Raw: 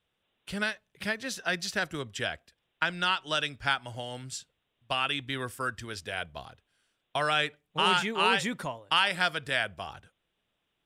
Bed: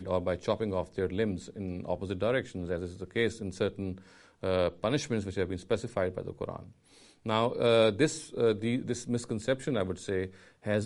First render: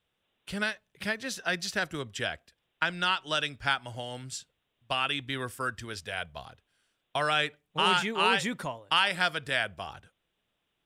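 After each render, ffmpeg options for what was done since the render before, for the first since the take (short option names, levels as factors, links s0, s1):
-filter_complex "[0:a]asettb=1/sr,asplit=3[s0][s1][s2];[s0]atrim=end=6.004[s3];[s1]atrim=start=6:end=6.47,asetpts=PTS-STARTPTS,afade=t=in:d=0.004:c=qsin,afade=t=out:st=0.466:d=0.004:c=qsin,equalizer=f=310:w=2.6:g=-10[s4];[s2]atrim=start=6.466[s5];[s3][s4]acrossfade=d=0.004:c1=hsin:c2=qsin[s6];[s6][s5]acrossfade=d=0.004:c1=qsin:c2=hsin"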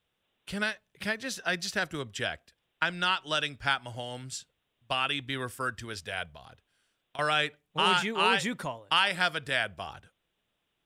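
-filter_complex "[0:a]asettb=1/sr,asplit=3[s0][s1][s2];[s0]atrim=end=6.314[s3];[s1]atrim=start=6.31:end=7.19,asetpts=PTS-STARTPTS,afade=t=in:d=0.004:c=qsin,afade=t=out:st=0.876:d=0.004:c=qsin,acompressor=threshold=0.00562:ratio=4:attack=3.2:release=140:knee=1:detection=peak[s4];[s2]atrim=start=7.186[s5];[s3][s4]acrossfade=d=0.004:c1=hsin:c2=qsin[s6];[s6][s5]acrossfade=d=0.004:c1=qsin:c2=hsin"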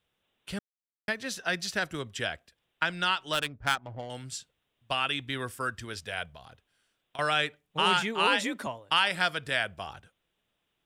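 -filter_complex "[0:a]asettb=1/sr,asplit=3[s0][s1][s2];[s0]atrim=end=3.334[s3];[s1]atrim=start=3.33:end=4.1,asetpts=PTS-STARTPTS,afade=t=in:d=0.004:c=qsin,afade=t=out:st=0.766:d=0.004:c=qsin,adynamicsmooth=sensitivity=4:basefreq=580[s4];[s2]atrim=start=4.096[s5];[s3][s4]acrossfade=d=0.004:c1=hsin:c2=qsin[s6];[s6][s5]acrossfade=d=0.004:c1=qsin:c2=hsin,asettb=1/sr,asplit=3[s7][s8][s9];[s7]atrim=end=8.274[s10];[s8]atrim=start=8.27:end=8.67,asetpts=PTS-STARTPTS,afade=t=in:d=0.004:c=qsin,afade=t=out:st=0.396:d=0.004:c=qsin,afreqshift=51[s11];[s9]atrim=start=8.666[s12];[s10][s11]acrossfade=d=0.004:c1=hsin:c2=qsin[s13];[s13][s12]acrossfade=d=0.004:c1=qsin:c2=hsin,asplit=3[s14][s15][s16];[s14]atrim=end=0.59,asetpts=PTS-STARTPTS,afade=t=out:st=0.586:d=0.004:c=hsin[s17];[s15]atrim=start=0.59:end=1.08,asetpts=PTS-STARTPTS,volume=0[s18];[s16]atrim=start=1.08,asetpts=PTS-STARTPTS,afade=t=in:d=0.004:c=hsin[s19];[s17][s18][s19]concat=n=3:v=0:a=1"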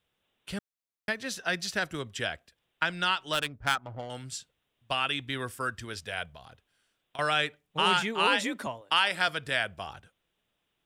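-filter_complex "[0:a]asettb=1/sr,asplit=3[s0][s1][s2];[s0]atrim=end=3.754[s3];[s1]atrim=start=3.75:end=4.18,asetpts=PTS-STARTPTS,afade=t=in:d=0.004:c=qsin,afade=t=out:st=0.426:d=0.004:c=qsin,equalizer=f=1300:t=o:w=0.38:g=8[s4];[s2]atrim=start=4.176[s5];[s3][s4]acrossfade=d=0.004:c1=hsin:c2=qsin[s6];[s6][s5]acrossfade=d=0.004:c1=qsin:c2=hsin,asettb=1/sr,asplit=3[s7][s8][s9];[s7]atrim=end=8.814[s10];[s8]atrim=start=8.81:end=9.28,asetpts=PTS-STARTPTS,afade=t=in:d=0.004:c=qsin,afade=t=out:st=0.466:d=0.004:c=qsin,highpass=210[s11];[s9]atrim=start=9.276[s12];[s10][s11]acrossfade=d=0.004:c1=hsin:c2=qsin[s13];[s13][s12]acrossfade=d=0.004:c1=qsin:c2=hsin"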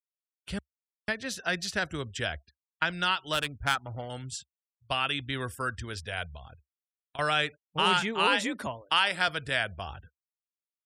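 -af "afftfilt=real='re*gte(hypot(re,im),0.00251)':imag='im*gte(hypot(re,im),0.00251)':win_size=1024:overlap=0.75,equalizer=f=69:t=o:w=0.94:g=13.5"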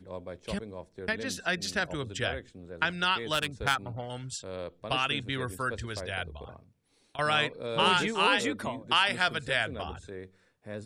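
-filter_complex "[1:a]volume=0.299[s0];[0:a][s0]amix=inputs=2:normalize=0"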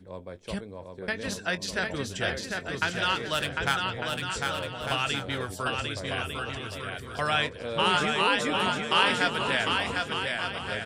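-filter_complex "[0:a]asplit=2[s0][s1];[s1]adelay=21,volume=0.224[s2];[s0][s2]amix=inputs=2:normalize=0,aecho=1:1:750|1200|1470|1632|1729:0.631|0.398|0.251|0.158|0.1"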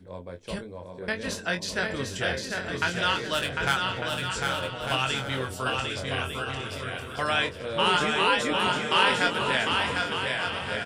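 -filter_complex "[0:a]asplit=2[s0][s1];[s1]adelay=23,volume=0.501[s2];[s0][s2]amix=inputs=2:normalize=0,aecho=1:1:810:0.282"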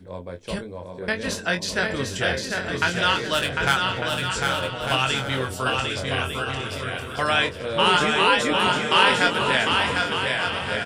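-af "volume=1.68"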